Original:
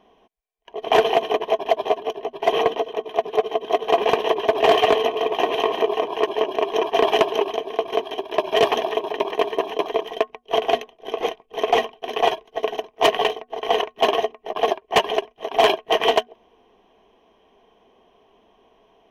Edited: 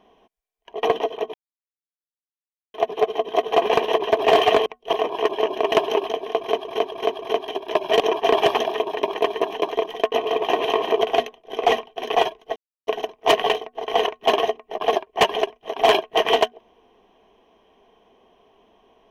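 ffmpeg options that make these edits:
-filter_complex "[0:a]asplit=15[s0][s1][s2][s3][s4][s5][s6][s7][s8][s9][s10][s11][s12][s13][s14];[s0]atrim=end=0.832[s15];[s1]atrim=start=2.588:end=3.1,asetpts=PTS-STARTPTS,afade=t=out:st=0.508:d=0.004:c=hsin,apad=pad_dur=1.4[s16];[s2]atrim=start=3.1:end=5.022,asetpts=PTS-STARTPTS,afade=t=in:d=0.004:c=hsin[s17];[s3]atrim=start=10.288:end=10.562[s18];[s4]atrim=start=5.908:end=6.702[s19];[s5]atrim=start=7.158:end=8.092[s20];[s6]atrim=start=7.818:end=8.092[s21];[s7]atrim=start=7.818:end=8.092[s22];[s8]atrim=start=7.818:end=8.632[s23];[s9]atrim=start=6.698:end=7.162[s24];[s10]atrim=start=8.628:end=10.292[s25];[s11]atrim=start=5.018:end=5.912[s26];[s12]atrim=start=10.558:end=11.182[s27];[s13]atrim=start=11.688:end=12.62,asetpts=PTS-STARTPTS,afade=t=out:st=0.928:d=0.004:c=hsin,apad=pad_dur=0.31[s28];[s14]atrim=start=12.62,asetpts=PTS-STARTPTS,afade=t=in:d=0.004:c=hsin[s29];[s16][s17]concat=n=2:v=0:a=1[s30];[s15][s30]acrossfade=d=0.004:c1=hsin:c2=hsin[s31];[s31][s18]acrossfade=d=0.004:c1=hsin:c2=hsin[s32];[s32][s19]acrossfade=d=0.004:c1=hsin:c2=hsin[s33];[s33][s20]acrossfade=d=0.004:c1=hsin:c2=hsin[s34];[s34][s21]acrossfade=d=0.004:c1=hsin:c2=hsin[s35];[s35][s22]acrossfade=d=0.004:c1=hsin:c2=hsin[s36];[s36][s23]acrossfade=d=0.004:c1=hsin:c2=hsin[s37];[s37][s24]acrossfade=d=0.004:c1=hsin:c2=hsin[s38];[s38][s25]acrossfade=d=0.004:c1=hsin:c2=hsin[s39];[s39][s26]acrossfade=d=0.004:c1=hsin:c2=hsin[s40];[s40][s27]acrossfade=d=0.004:c1=hsin:c2=hsin[s41];[s28][s29]concat=n=2:v=0:a=1[s42];[s41][s42]acrossfade=d=0.004:c1=hsin:c2=hsin"

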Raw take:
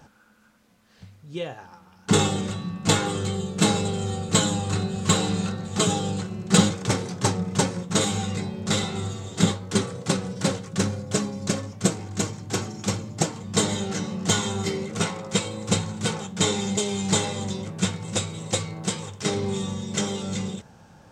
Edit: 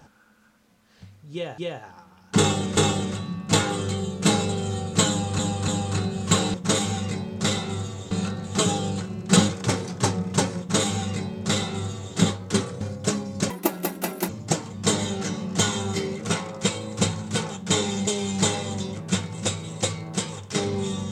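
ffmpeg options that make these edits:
-filter_complex "[0:a]asplit=10[s0][s1][s2][s3][s4][s5][s6][s7][s8][s9];[s0]atrim=end=1.582[s10];[s1]atrim=start=1.328:end=2.522[s11];[s2]atrim=start=2.128:end=4.752[s12];[s3]atrim=start=4.458:end=4.752[s13];[s4]atrim=start=4.458:end=5.322[s14];[s5]atrim=start=7.798:end=9.372[s15];[s6]atrim=start=5.318:end=10.022[s16];[s7]atrim=start=10.878:end=11.574[s17];[s8]atrim=start=11.57:end=12.99,asetpts=PTS-STARTPTS,asetrate=79380,aresample=44100[s18];[s9]atrim=start=12.986[s19];[s10][s11]acrossfade=d=0.004:c1=hsin:c2=hsin[s20];[s20][s12]acrossfade=d=0.004:c1=hsin:c2=hsin[s21];[s21][s13]acrossfade=d=0.004:c1=hsin:c2=hsin[s22];[s22][s14]acrossfade=d=0.004:c1=hsin:c2=hsin[s23];[s23][s15]acrossfade=d=0.004:c1=hsin:c2=hsin[s24];[s24][s16]acrossfade=d=0.004:c1=hsin:c2=hsin[s25];[s25][s17]acrossfade=d=0.004:c1=hsin:c2=hsin[s26];[s26][s18]acrossfade=d=0.004:c1=hsin:c2=hsin[s27];[s27][s19]acrossfade=d=0.004:c1=hsin:c2=hsin"

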